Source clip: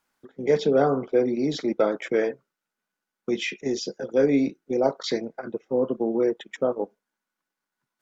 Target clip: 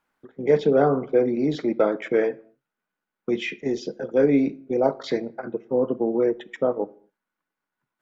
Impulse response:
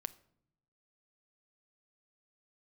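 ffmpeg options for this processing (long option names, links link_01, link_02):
-filter_complex "[0:a]asplit=2[link_01][link_02];[1:a]atrim=start_sample=2205,afade=type=out:start_time=0.31:duration=0.01,atrim=end_sample=14112,lowpass=3300[link_03];[link_02][link_03]afir=irnorm=-1:irlink=0,volume=6.5dB[link_04];[link_01][link_04]amix=inputs=2:normalize=0,volume=-6.5dB"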